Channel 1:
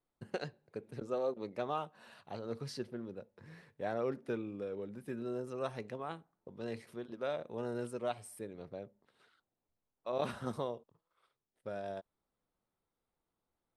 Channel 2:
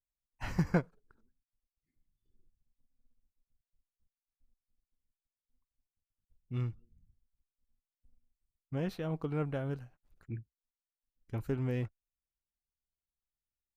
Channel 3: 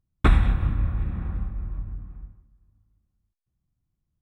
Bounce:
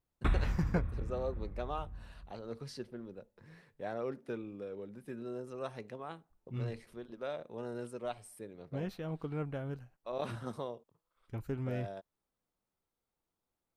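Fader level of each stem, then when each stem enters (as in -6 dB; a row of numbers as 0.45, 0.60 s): -2.5, -3.5, -12.5 dB; 0.00, 0.00, 0.00 s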